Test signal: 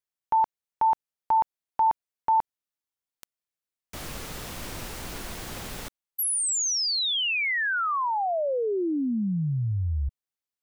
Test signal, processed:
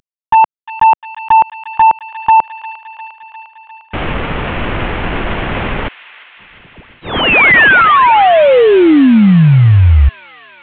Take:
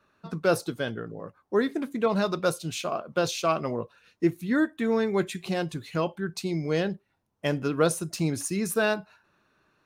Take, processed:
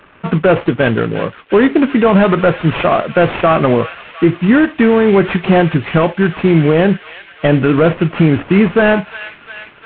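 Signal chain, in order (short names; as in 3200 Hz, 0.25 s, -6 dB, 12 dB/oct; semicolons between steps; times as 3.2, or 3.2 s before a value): CVSD 16 kbps; thin delay 0.352 s, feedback 71%, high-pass 1900 Hz, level -13 dB; maximiser +22 dB; gain -1 dB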